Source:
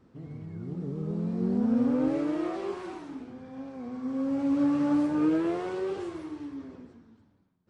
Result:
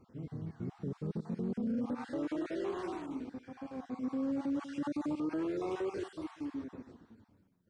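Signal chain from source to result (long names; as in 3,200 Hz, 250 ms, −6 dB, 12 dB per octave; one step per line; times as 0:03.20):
time-frequency cells dropped at random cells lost 32%
single-tap delay 191 ms −19 dB
brickwall limiter −28.5 dBFS, peak gain reduction 11.5 dB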